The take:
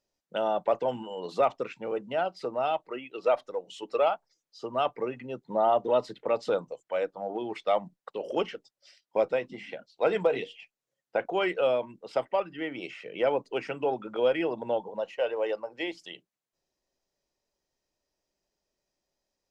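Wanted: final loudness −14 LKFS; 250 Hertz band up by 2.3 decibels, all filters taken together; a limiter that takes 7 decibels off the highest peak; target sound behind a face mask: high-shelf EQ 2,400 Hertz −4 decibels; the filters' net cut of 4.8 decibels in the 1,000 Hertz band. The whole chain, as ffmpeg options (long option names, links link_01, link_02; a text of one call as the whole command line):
ffmpeg -i in.wav -af "equalizer=frequency=250:width_type=o:gain=4,equalizer=frequency=1000:width_type=o:gain=-7,alimiter=limit=-20.5dB:level=0:latency=1,highshelf=frequency=2400:gain=-4,volume=19.5dB" out.wav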